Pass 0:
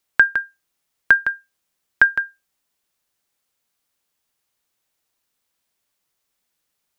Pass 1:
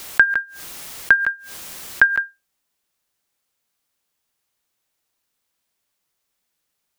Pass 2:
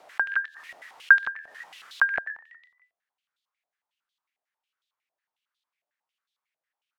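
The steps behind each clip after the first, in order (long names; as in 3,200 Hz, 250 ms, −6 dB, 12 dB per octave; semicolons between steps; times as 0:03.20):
background raised ahead of every attack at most 54 dB per second
echo with shifted repeats 124 ms, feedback 60%, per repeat +78 Hz, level −19 dB; band-pass on a step sequencer 11 Hz 680–3,600 Hz; level +2 dB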